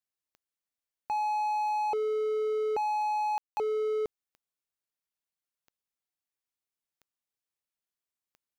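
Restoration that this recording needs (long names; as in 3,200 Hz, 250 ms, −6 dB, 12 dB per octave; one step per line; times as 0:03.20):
click removal
ambience match 0:03.38–0:03.57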